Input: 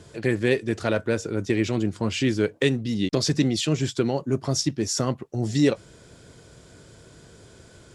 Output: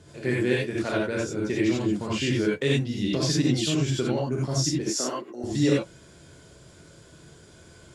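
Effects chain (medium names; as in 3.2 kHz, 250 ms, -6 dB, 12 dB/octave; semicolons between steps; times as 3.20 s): 4.80–5.44 s: high-pass 270 Hz 24 dB/octave; gated-style reverb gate 110 ms rising, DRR -4.5 dB; trim -6.5 dB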